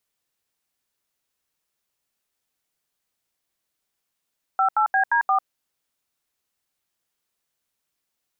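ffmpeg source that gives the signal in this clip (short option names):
-f lavfi -i "aevalsrc='0.112*clip(min(mod(t,0.175),0.097-mod(t,0.175))/0.002,0,1)*(eq(floor(t/0.175),0)*(sin(2*PI*770*mod(t,0.175))+sin(2*PI*1336*mod(t,0.175)))+eq(floor(t/0.175),1)*(sin(2*PI*852*mod(t,0.175))+sin(2*PI*1336*mod(t,0.175)))+eq(floor(t/0.175),2)*(sin(2*PI*770*mod(t,0.175))+sin(2*PI*1633*mod(t,0.175)))+eq(floor(t/0.175),3)*(sin(2*PI*941*mod(t,0.175))+sin(2*PI*1633*mod(t,0.175)))+eq(floor(t/0.175),4)*(sin(2*PI*770*mod(t,0.175))+sin(2*PI*1209*mod(t,0.175))))':d=0.875:s=44100"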